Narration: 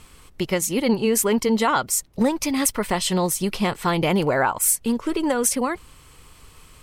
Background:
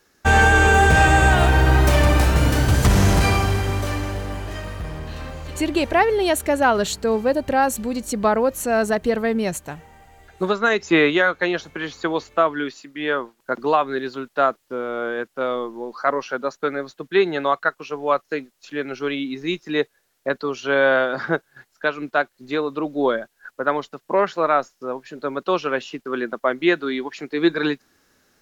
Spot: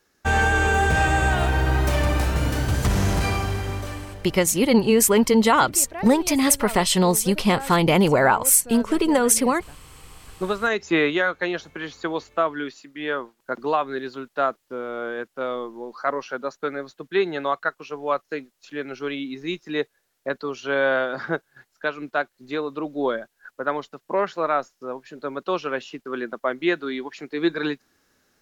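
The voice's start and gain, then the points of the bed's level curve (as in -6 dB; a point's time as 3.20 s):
3.85 s, +3.0 dB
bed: 3.74 s -5.5 dB
4.50 s -16.5 dB
9.77 s -16.5 dB
10.42 s -4 dB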